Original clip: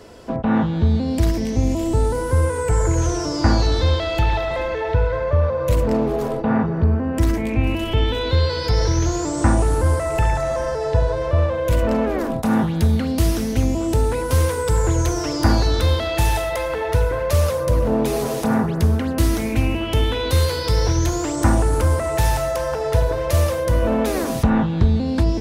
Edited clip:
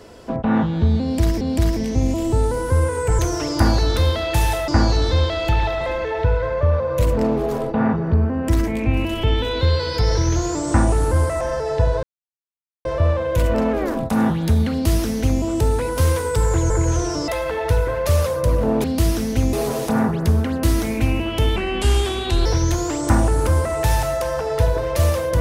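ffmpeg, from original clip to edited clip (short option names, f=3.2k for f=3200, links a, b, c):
-filter_complex "[0:a]asplit=12[a][b][c][d][e][f][g][h][i][j][k][l];[a]atrim=end=1.412[m];[b]atrim=start=1.018:end=2.802[n];[c]atrim=start=15.028:end=16.522[o];[d]atrim=start=3.378:end=10.112[p];[e]atrim=start=10.558:end=11.18,asetpts=PTS-STARTPTS,afade=t=out:st=0.618:d=0.004:c=hsin,apad=pad_dur=0.82[q];[f]atrim=start=11.18:end=15.032,asetpts=PTS-STARTPTS,afade=t=in:d=0.004:c=hsin[r];[g]atrim=start=2.798:end=3.382[s];[h]atrim=start=16.518:end=18.082[t];[i]atrim=start=13.038:end=13.732[u];[j]atrim=start=18.078:end=20.114[v];[k]atrim=start=20.11:end=20.8,asetpts=PTS-STARTPTS,asetrate=33957,aresample=44100,atrim=end_sample=39518,asetpts=PTS-STARTPTS[w];[l]atrim=start=20.796[x];[m][n]acrossfade=d=0.004:c1=hsin:c2=hsin[y];[y][o]acrossfade=d=0.004:c1=hsin:c2=hsin[z];[z][p]acrossfade=d=0.004:c1=hsin:c2=hsin[aa];[q][r]concat=n=2:v=0:a=1[ab];[aa][ab]acrossfade=d=0.004:c1=hsin:c2=hsin[ac];[ac][s]acrossfade=d=0.004:c1=hsin:c2=hsin[ad];[ad][t]acrossfade=d=0.004:c1=hsin:c2=hsin[ae];[ae][u]acrossfade=d=0.004:c1=hsin:c2=hsin[af];[af][v]acrossfade=d=0.004:c1=hsin:c2=hsin[ag];[ag][w]acrossfade=d=0.004:c1=hsin:c2=hsin[ah];[ah][x]acrossfade=d=0.004:c1=hsin:c2=hsin"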